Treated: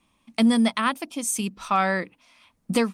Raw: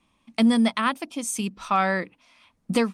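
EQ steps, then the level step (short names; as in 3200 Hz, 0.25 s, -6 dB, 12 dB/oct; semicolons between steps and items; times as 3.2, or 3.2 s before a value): high shelf 10000 Hz +8.5 dB; 0.0 dB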